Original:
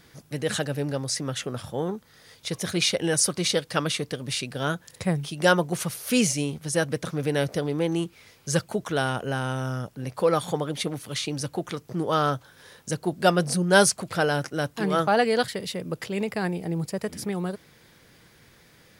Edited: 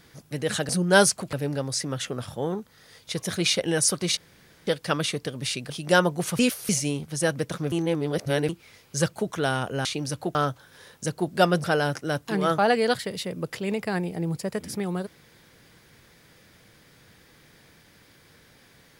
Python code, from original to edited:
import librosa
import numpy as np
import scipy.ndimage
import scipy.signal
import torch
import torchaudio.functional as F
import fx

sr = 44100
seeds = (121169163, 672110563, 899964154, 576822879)

y = fx.edit(x, sr, fx.insert_room_tone(at_s=3.53, length_s=0.5),
    fx.cut(start_s=4.56, length_s=0.67),
    fx.reverse_span(start_s=5.92, length_s=0.3),
    fx.reverse_span(start_s=7.25, length_s=0.77),
    fx.cut(start_s=9.38, length_s=1.79),
    fx.cut(start_s=11.67, length_s=0.53),
    fx.move(start_s=13.49, length_s=0.64, to_s=0.69), tone=tone)